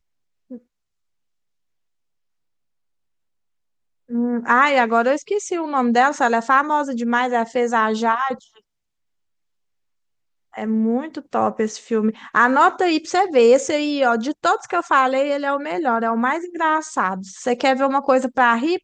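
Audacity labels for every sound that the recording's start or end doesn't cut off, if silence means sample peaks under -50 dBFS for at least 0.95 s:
4.090000	8.600000	sound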